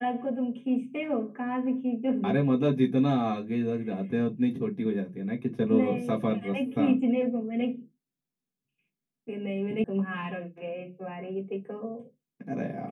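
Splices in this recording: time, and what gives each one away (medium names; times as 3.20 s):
9.84 s: sound stops dead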